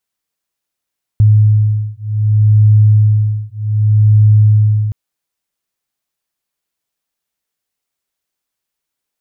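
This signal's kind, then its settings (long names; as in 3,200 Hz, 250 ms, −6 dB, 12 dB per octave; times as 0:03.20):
two tones that beat 106 Hz, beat 0.65 Hz, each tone −10 dBFS 3.72 s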